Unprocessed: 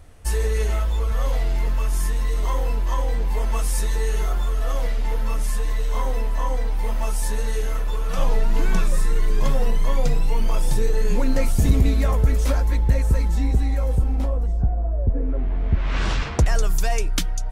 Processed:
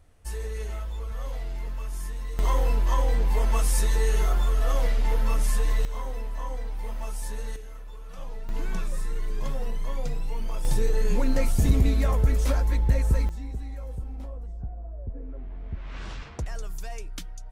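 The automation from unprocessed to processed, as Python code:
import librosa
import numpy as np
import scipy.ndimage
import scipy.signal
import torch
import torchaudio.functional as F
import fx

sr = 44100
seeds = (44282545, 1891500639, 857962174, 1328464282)

y = fx.gain(x, sr, db=fx.steps((0.0, -11.0), (2.39, -0.5), (5.85, -9.5), (7.56, -17.5), (8.49, -10.0), (10.65, -3.5), (13.29, -14.5)))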